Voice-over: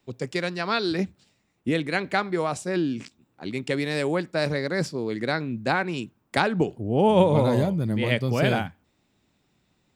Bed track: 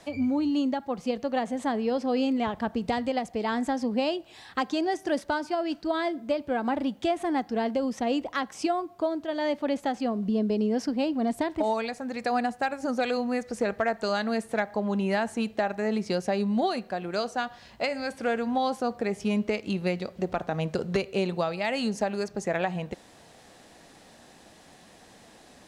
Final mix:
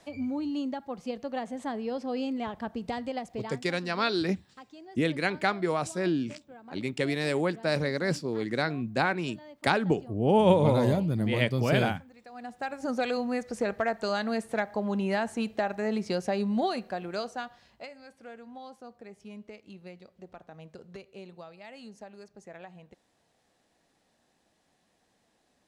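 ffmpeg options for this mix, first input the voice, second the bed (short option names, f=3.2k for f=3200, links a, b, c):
-filter_complex "[0:a]adelay=3300,volume=-2.5dB[a];[1:a]volume=13.5dB,afade=t=out:st=3.36:d=0.23:silence=0.16788,afade=t=in:st=12.34:d=0.56:silence=0.105925,afade=t=out:st=16.88:d=1.07:silence=0.149624[b];[a][b]amix=inputs=2:normalize=0"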